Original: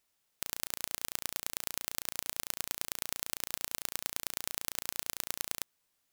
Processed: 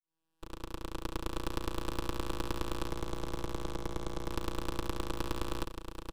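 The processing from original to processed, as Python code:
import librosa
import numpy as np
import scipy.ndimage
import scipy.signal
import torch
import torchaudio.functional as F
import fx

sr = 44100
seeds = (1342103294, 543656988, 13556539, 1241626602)

p1 = fx.fade_in_head(x, sr, length_s=1.38)
p2 = fx.peak_eq(p1, sr, hz=1900.0, db=-11.0, octaves=2.4, at=(2.87, 4.29))
p3 = fx.vocoder(p2, sr, bands=4, carrier='square', carrier_hz=80.8)
p4 = np.abs(p3)
p5 = p4 + fx.echo_multitap(p4, sr, ms=(83, 883), db=(-19.5, -7.5), dry=0)
y = F.gain(torch.from_numpy(p5), 9.5).numpy()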